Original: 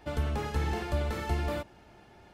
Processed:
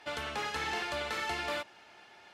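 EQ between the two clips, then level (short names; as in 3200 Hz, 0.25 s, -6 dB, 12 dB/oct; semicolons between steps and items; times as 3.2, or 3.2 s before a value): band-pass 3100 Hz, Q 0.56; +7.0 dB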